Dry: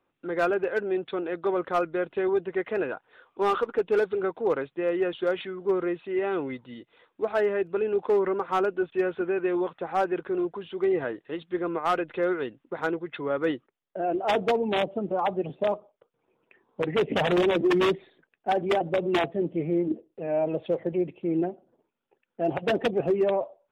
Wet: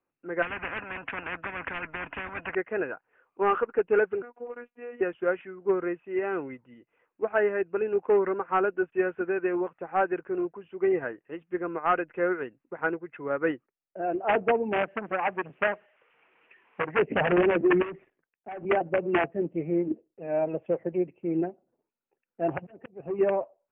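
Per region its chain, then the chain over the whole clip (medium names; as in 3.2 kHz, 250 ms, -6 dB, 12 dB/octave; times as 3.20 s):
0.42–2.55 s: small resonant body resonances 280/1000/2500 Hz, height 10 dB + spectrum-flattening compressor 10:1
4.22–5.01 s: peaking EQ 110 Hz -14 dB 1.3 oct + compression 12:1, threshold -27 dBFS + robot voice 241 Hz
14.83–16.99 s: zero-crossing glitches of -30.5 dBFS + transient shaper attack +7 dB, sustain -1 dB + transformer saturation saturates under 2.2 kHz
17.82–18.65 s: waveshaping leveller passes 2 + compression 4:1, threshold -33 dBFS + three bands expanded up and down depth 40%
22.48–23.19 s: slow attack 473 ms + peaking EQ 100 Hz +5 dB 1.8 oct + transformer saturation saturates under 460 Hz
whole clip: dynamic bell 1.6 kHz, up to +5 dB, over -45 dBFS, Q 2.8; steep low-pass 2.8 kHz 72 dB/octave; upward expansion 1.5:1, over -41 dBFS; trim +1 dB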